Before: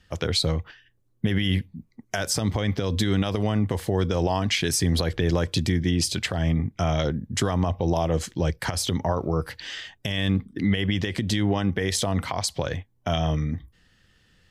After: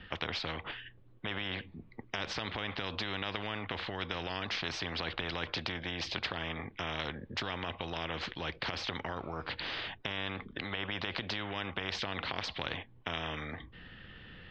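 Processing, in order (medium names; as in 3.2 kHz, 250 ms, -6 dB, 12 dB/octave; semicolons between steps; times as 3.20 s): steep low-pass 3.5 kHz 36 dB/octave; spectrum-flattening compressor 4:1; trim -3.5 dB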